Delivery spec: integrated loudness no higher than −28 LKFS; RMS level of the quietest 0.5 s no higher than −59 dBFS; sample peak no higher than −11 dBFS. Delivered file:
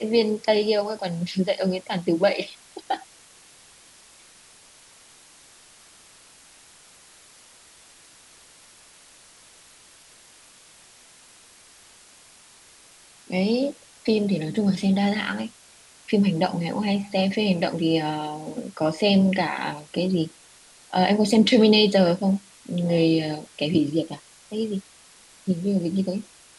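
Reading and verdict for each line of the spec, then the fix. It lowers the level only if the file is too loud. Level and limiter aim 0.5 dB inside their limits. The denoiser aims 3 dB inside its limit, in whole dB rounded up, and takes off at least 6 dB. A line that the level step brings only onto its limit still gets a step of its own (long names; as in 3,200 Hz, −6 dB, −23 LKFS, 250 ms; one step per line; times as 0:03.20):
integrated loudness −23.5 LKFS: out of spec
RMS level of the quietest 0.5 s −52 dBFS: out of spec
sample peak −6.5 dBFS: out of spec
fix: broadband denoise 6 dB, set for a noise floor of −52 dBFS
level −5 dB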